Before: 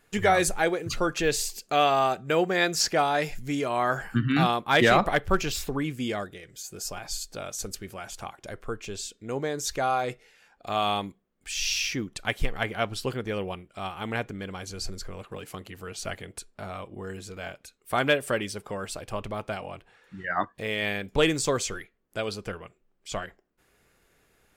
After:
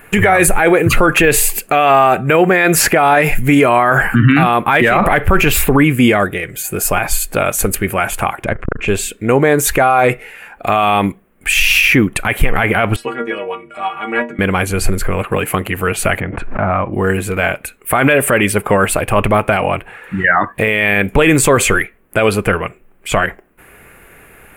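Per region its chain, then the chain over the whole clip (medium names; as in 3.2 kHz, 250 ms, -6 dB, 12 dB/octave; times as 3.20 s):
8.44–8.88 s: low-pass 8.1 kHz 24 dB/octave + tone controls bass +5 dB, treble -8 dB + transformer saturation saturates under 430 Hz
12.96–14.39 s: three-band isolator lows -19 dB, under 190 Hz, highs -22 dB, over 7.9 kHz + upward compressor, threshold -36 dBFS + inharmonic resonator 70 Hz, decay 0.55 s, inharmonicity 0.03
16.20–16.93 s: low-pass 1.5 kHz + peaking EQ 430 Hz -9.5 dB 0.35 oct + swell ahead of each attack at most 30 dB/s
whole clip: FFT filter 540 Hz 0 dB, 2.5 kHz +4 dB, 3.6 kHz -10 dB, 5.5 kHz -17 dB, 10 kHz +3 dB; loudness maximiser +23 dB; trim -1 dB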